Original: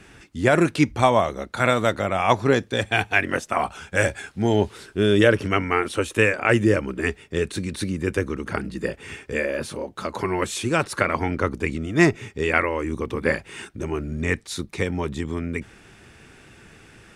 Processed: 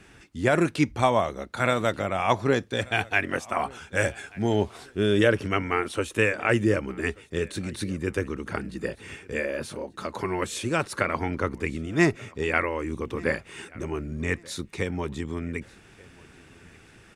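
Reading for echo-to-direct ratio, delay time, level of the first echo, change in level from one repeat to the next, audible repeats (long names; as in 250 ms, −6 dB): −23.5 dB, 1,184 ms, −24.0 dB, −11.0 dB, 2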